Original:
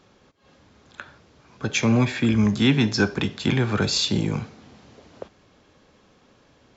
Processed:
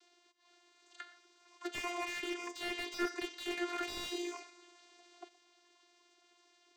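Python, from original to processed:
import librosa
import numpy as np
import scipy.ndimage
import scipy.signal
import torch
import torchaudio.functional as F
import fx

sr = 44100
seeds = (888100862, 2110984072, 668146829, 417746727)

y = fx.spec_quant(x, sr, step_db=15)
y = fx.vocoder(y, sr, bands=16, carrier='saw', carrier_hz=350.0)
y = np.diff(y, prepend=0.0)
y = fx.echo_feedback(y, sr, ms=119, feedback_pct=48, wet_db=-22.0)
y = fx.slew_limit(y, sr, full_power_hz=16.0)
y = F.gain(torch.from_numpy(y), 6.0).numpy()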